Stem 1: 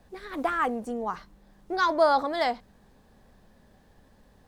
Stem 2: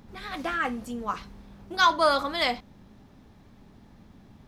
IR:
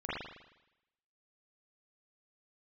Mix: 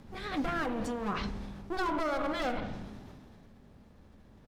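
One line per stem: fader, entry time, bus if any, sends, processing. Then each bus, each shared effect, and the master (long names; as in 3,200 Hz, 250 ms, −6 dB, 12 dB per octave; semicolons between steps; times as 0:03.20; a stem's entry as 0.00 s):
−2.5 dB, 0.00 s, send −9.5 dB, windowed peak hold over 33 samples
−2.0 dB, 0.4 ms, no send, treble cut that deepens with the level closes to 1,400 Hz, closed at −22.5 dBFS; level that may fall only so fast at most 25 dB per second; automatic ducking −7 dB, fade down 1.95 s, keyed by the first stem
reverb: on, RT60 0.90 s, pre-delay 39 ms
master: brickwall limiter −24 dBFS, peak gain reduction 11 dB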